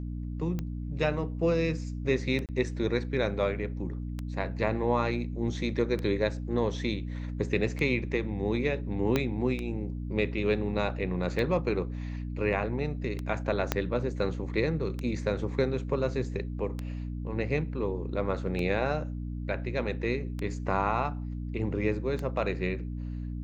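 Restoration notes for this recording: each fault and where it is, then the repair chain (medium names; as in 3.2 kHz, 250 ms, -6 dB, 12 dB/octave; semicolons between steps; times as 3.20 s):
hum 60 Hz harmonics 5 -35 dBFS
tick 33 1/3 rpm -21 dBFS
2.46–2.49 s: dropout 28 ms
9.16 s: pop -12 dBFS
13.72 s: pop -10 dBFS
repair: de-click; de-hum 60 Hz, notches 5; interpolate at 2.46 s, 28 ms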